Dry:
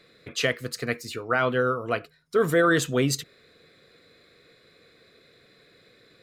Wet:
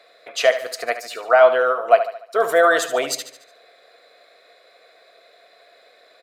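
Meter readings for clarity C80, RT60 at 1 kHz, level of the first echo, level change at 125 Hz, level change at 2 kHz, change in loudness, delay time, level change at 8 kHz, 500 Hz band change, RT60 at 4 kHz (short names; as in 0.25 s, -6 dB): none, none, -11.5 dB, under -20 dB, +5.0 dB, +7.0 dB, 73 ms, +3.5 dB, +8.5 dB, none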